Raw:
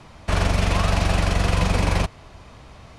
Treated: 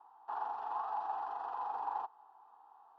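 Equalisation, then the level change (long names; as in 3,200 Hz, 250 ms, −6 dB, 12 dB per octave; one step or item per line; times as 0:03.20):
four-pole ladder band-pass 870 Hz, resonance 80%
high-frequency loss of the air 100 metres
phaser with its sweep stopped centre 590 Hz, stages 6
−3.5 dB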